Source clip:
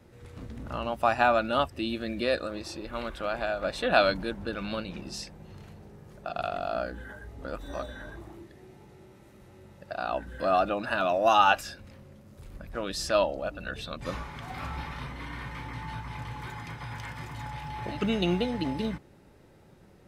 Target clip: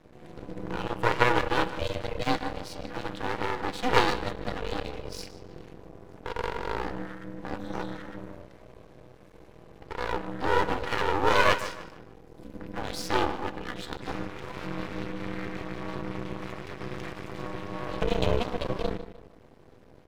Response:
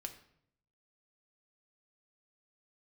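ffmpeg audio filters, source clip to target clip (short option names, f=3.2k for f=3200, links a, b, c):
-filter_complex "[0:a]asplit=2[a][b];[b]adelay=152,lowpass=f=4k:p=1,volume=-12.5dB,asplit=2[c][d];[d]adelay=152,lowpass=f=4k:p=1,volume=0.37,asplit=2[e][f];[f]adelay=152,lowpass=f=4k:p=1,volume=0.37,asplit=2[g][h];[h]adelay=152,lowpass=f=4k:p=1,volume=0.37[i];[a][c][e][g][i]amix=inputs=5:normalize=0,asplit=2[j][k];[1:a]atrim=start_sample=2205,lowpass=7.1k,lowshelf=f=130:g=9[l];[k][l]afir=irnorm=-1:irlink=0,volume=1.5dB[m];[j][m]amix=inputs=2:normalize=0,aeval=exprs='val(0)*sin(2*PI*250*n/s)':c=same,aeval=exprs='max(val(0),0)':c=same,volume=1dB"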